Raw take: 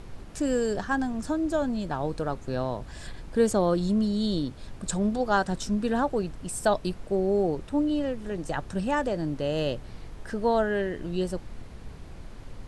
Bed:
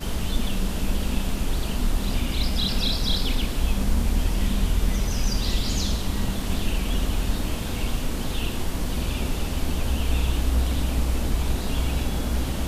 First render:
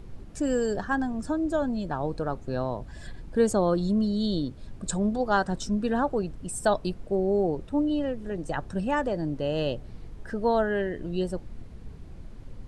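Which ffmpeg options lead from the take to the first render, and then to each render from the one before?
-af "afftdn=nr=8:nf=-44"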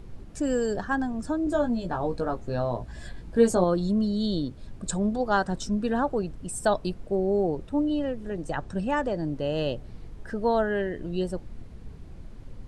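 -filter_complex "[0:a]asettb=1/sr,asplit=3[s0][s1][s2];[s0]atrim=end=1.454[s3];[s1]atrim=start=1.45:end=3.64,asetpts=PTS-STARTPTS,afade=t=in:d=0.004:c=qsin,afade=t=out:st=2.186:d=0.004:c=qsin,asplit=2[s4][s5];[s5]adelay=17,volume=0.631[s6];[s4][s6]amix=inputs=2:normalize=0,atrim=end_sample=96579[s7];[s2]atrim=start=3.636[s8];[s3][s7]acrossfade=d=0.004:c1=hsin:c2=qsin[s9];[s9][s8]acrossfade=d=0.004:c1=qsin:c2=hsin,asettb=1/sr,asplit=3[s10][s11][s12];[s10]atrim=end=8.544[s13];[s11]atrim=start=8.54:end=9.21,asetpts=PTS-STARTPTS,afade=t=in:d=0.004:c=qsin,afade=t=out:st=0.666:d=0.004:c=qsin,lowpass=f=9500:w=0.5412,lowpass=f=9500:w=1.3066[s14];[s12]atrim=start=9.206[s15];[s13][s14]acrossfade=d=0.004:c1=hsin:c2=qsin[s16];[s16][s15]acrossfade=d=0.004:c1=qsin:c2=hsin"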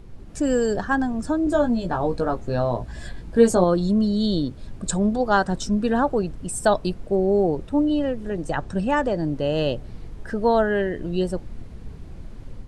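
-af "dynaudnorm=f=180:g=3:m=1.78"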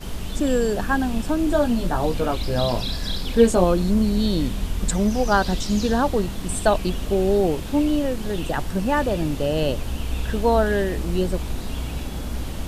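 -filter_complex "[1:a]volume=0.631[s0];[0:a][s0]amix=inputs=2:normalize=0"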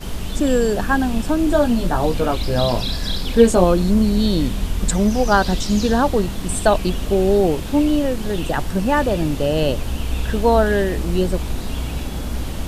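-af "volume=1.5,alimiter=limit=0.891:level=0:latency=1"

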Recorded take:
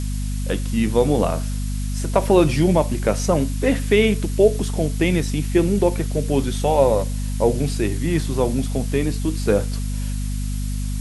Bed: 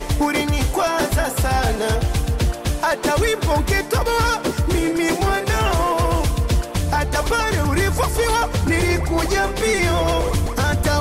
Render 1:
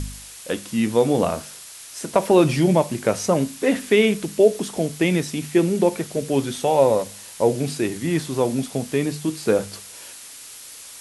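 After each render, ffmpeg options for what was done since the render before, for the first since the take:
-af "bandreject=f=50:t=h:w=4,bandreject=f=100:t=h:w=4,bandreject=f=150:t=h:w=4,bandreject=f=200:t=h:w=4,bandreject=f=250:t=h:w=4"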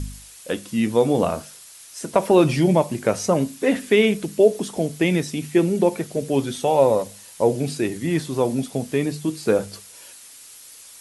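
-af "afftdn=nr=6:nf=-41"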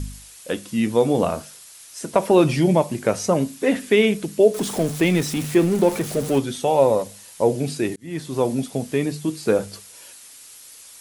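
-filter_complex "[0:a]asettb=1/sr,asplit=3[s0][s1][s2];[s0]atrim=end=4.544[s3];[s1]atrim=start=4.54:end=6.39,asetpts=PTS-STARTPTS,afade=t=in:d=0.004:c=qsin,afade=t=out:st=1.846:d=0.004:c=qsin,aeval=exprs='val(0)+0.5*0.0422*sgn(val(0))':c=same[s4];[s2]atrim=start=6.386[s5];[s3][s4]acrossfade=d=0.004:c1=hsin:c2=qsin[s6];[s6][s5]acrossfade=d=0.004:c1=qsin:c2=hsin,asplit=2[s7][s8];[s7]atrim=end=7.96,asetpts=PTS-STARTPTS,afade=t=out:st=7.956:d=0.004:c=hsin[s9];[s8]atrim=start=7.96,asetpts=PTS-STARTPTS,afade=t=in:d=0.43[s10];[s9][s10]concat=n=2:v=0:a=1"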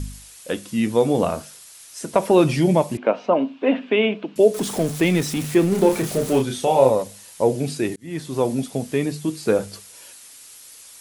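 -filter_complex "[0:a]asettb=1/sr,asplit=3[s0][s1][s2];[s0]atrim=end=2.974[s3];[s1]atrim=start=2.97:end=4.36,asetpts=PTS-STARTPTS,afade=t=in:d=0.004:c=qsin,afade=t=out:st=1.386:d=0.004:c=qsin,highpass=f=240:w=0.5412,highpass=f=240:w=1.3066,equalizer=f=250:t=q:w=4:g=4,equalizer=f=400:t=q:w=4:g=-4,equalizer=f=650:t=q:w=4:g=5,equalizer=f=960:t=q:w=4:g=5,equalizer=f=1900:t=q:w=4:g=-7,equalizer=f=2800:t=q:w=4:g=5,lowpass=f=3000:w=0.5412,lowpass=f=3000:w=1.3066[s4];[s2]atrim=start=4.356[s5];[s3][s4]acrossfade=d=0.004:c1=hsin:c2=qsin[s6];[s6][s5]acrossfade=d=0.004:c1=qsin:c2=hsin,asettb=1/sr,asplit=3[s7][s8][s9];[s7]atrim=end=5.694[s10];[s8]atrim=start=5.69:end=6.9,asetpts=PTS-STARTPTS,afade=t=in:d=0.004:c=qsin,afade=t=out:st=1.206:d=0.004:c=qsin,asplit=2[s11][s12];[s12]adelay=31,volume=0.631[s13];[s11][s13]amix=inputs=2:normalize=0,atrim=end_sample=53361[s14];[s9]atrim=start=6.896[s15];[s10][s14]acrossfade=d=0.004:c1=hsin:c2=qsin[s16];[s16][s15]acrossfade=d=0.004:c1=qsin:c2=hsin"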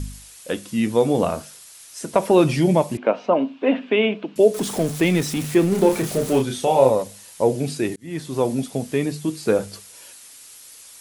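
-af anull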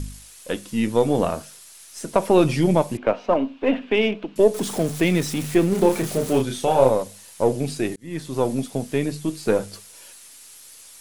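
-af "aeval=exprs='if(lt(val(0),0),0.708*val(0),val(0))':c=same"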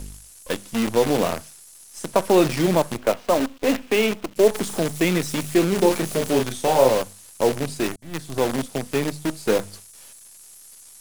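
-filter_complex "[0:a]acrossover=split=170|5300[s0][s1][s2];[s0]asoftclip=type=tanh:threshold=0.0224[s3];[s1]acrusher=bits=5:dc=4:mix=0:aa=0.000001[s4];[s3][s4][s2]amix=inputs=3:normalize=0"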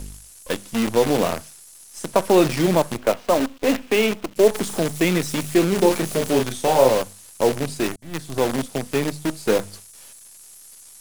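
-af "volume=1.12"

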